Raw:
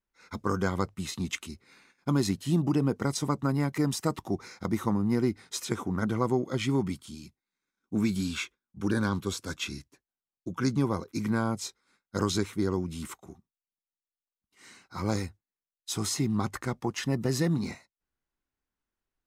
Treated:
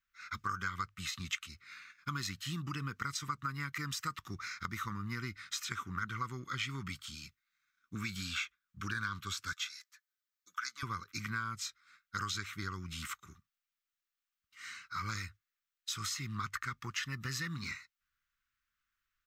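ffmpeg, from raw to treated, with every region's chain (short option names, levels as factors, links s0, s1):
-filter_complex "[0:a]asettb=1/sr,asplit=3[s0][s1][s2];[s0]atrim=end=9.534[s3];[s1]atrim=start=9.53:end=10.83,asetpts=PTS-STARTPTS,afade=t=in:d=0.004:c=qsin,afade=t=out:st=1.296:d=0.004:c=qsin,highpass=1400,equalizer=f=2700:t=o:w=0.45:g=-7.5,aecho=1:1:4:0.33,atrim=end_sample=57330[s4];[s2]atrim=start=10.826[s5];[s3][s4]acrossfade=d=0.004:c1=hsin:c2=qsin[s6];[s6][s5]acrossfade=d=0.004:c1=qsin:c2=hsin,firequalizer=gain_entry='entry(110,0);entry(210,-9);entry(710,-24);entry(1200,12);entry(4700,7)':delay=0.05:min_phase=1,acompressor=threshold=0.0178:ratio=2.5,equalizer=f=9800:t=o:w=0.31:g=-14.5,volume=0.708"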